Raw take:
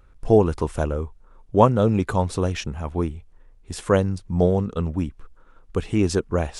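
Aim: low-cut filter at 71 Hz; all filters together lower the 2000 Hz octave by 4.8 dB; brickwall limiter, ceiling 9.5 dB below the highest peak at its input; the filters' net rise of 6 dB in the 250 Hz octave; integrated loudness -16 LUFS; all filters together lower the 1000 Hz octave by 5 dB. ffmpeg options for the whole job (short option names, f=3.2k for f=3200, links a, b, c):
-af "highpass=71,equalizer=f=250:t=o:g=8.5,equalizer=f=1k:t=o:g=-6,equalizer=f=2k:t=o:g=-4.5,volume=6.5dB,alimiter=limit=-3dB:level=0:latency=1"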